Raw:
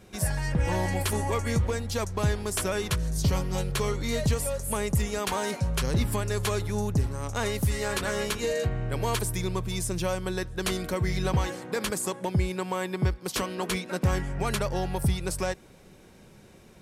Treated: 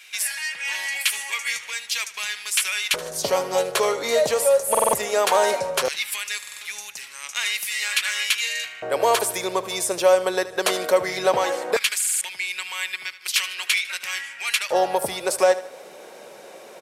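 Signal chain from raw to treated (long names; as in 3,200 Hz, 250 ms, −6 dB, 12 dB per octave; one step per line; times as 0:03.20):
in parallel at −1.5 dB: downward compressor, threshold −39 dBFS, peak gain reduction 18 dB
on the sum: repeating echo 76 ms, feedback 44%, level −15.5 dB
auto-filter high-pass square 0.17 Hz 560–2,400 Hz
buffer that repeats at 0:04.70/0:06.38/0:11.98, samples 2,048, times 4
level +6 dB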